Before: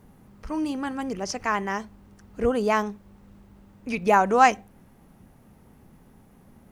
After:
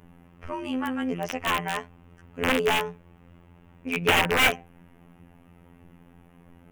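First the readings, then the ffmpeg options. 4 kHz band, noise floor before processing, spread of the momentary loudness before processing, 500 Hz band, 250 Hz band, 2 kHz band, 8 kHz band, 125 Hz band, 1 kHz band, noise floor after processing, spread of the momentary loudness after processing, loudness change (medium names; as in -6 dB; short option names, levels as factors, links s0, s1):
+11.0 dB, -55 dBFS, 14 LU, -3.0 dB, -2.0 dB, +3.5 dB, +1.5 dB, +2.5 dB, -6.0 dB, -55 dBFS, 15 LU, -1.0 dB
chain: -af "afftfilt=real='hypot(re,im)*cos(PI*b)':imag='0':win_size=2048:overlap=0.75,aeval=exprs='(mod(7.94*val(0)+1,2)-1)/7.94':c=same,highshelf=f=3500:t=q:w=3:g=-7,volume=1.58"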